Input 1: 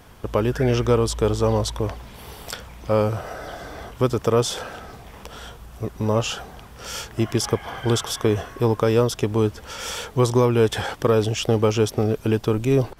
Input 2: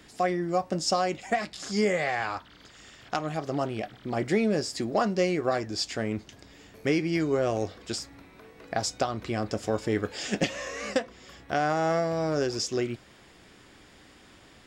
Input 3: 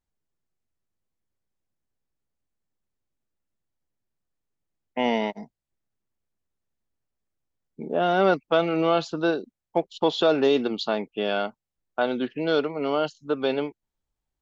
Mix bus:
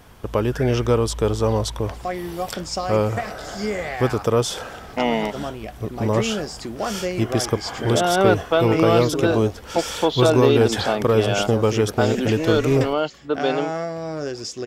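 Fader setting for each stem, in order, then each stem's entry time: 0.0, −1.0, +2.5 decibels; 0.00, 1.85, 0.00 seconds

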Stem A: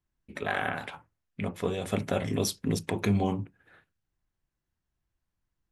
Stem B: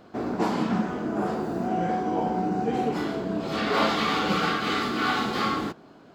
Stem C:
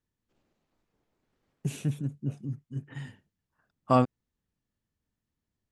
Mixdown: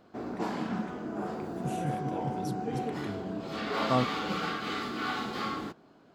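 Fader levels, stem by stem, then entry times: −17.0, −8.0, −5.0 decibels; 0.00, 0.00, 0.00 seconds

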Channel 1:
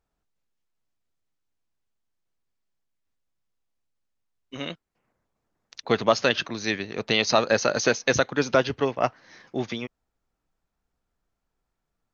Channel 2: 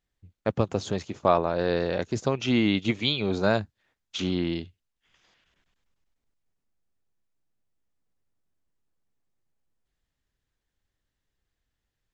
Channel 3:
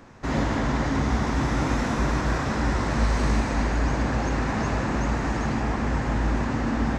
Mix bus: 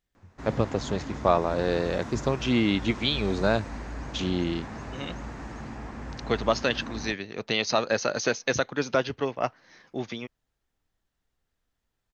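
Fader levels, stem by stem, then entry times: −4.0, −0.5, −13.0 decibels; 0.40, 0.00, 0.15 seconds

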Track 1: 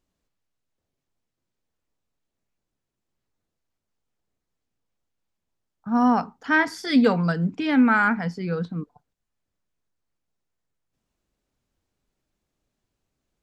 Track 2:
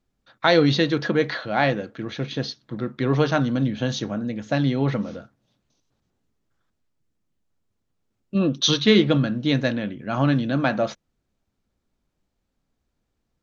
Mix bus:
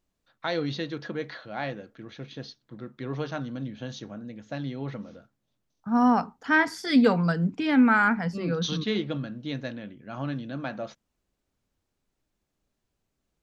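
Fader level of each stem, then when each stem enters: −1.5, −12.0 decibels; 0.00, 0.00 seconds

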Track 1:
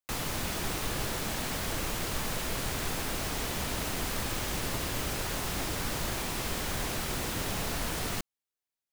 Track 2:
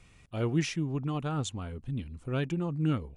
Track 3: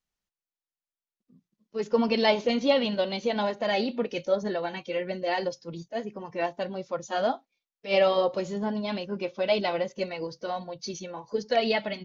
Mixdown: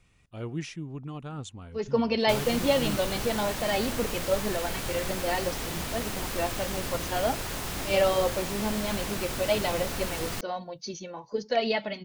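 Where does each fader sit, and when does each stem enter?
−0.5, −6.0, −1.5 decibels; 2.20, 0.00, 0.00 seconds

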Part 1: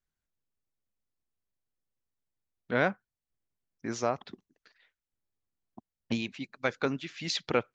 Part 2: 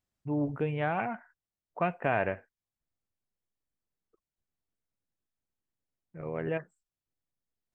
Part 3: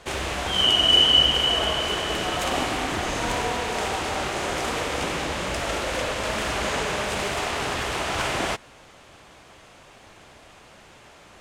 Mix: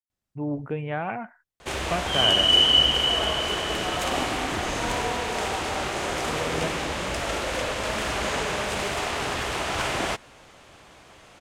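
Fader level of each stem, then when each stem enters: muted, +1.0 dB, −1.0 dB; muted, 0.10 s, 1.60 s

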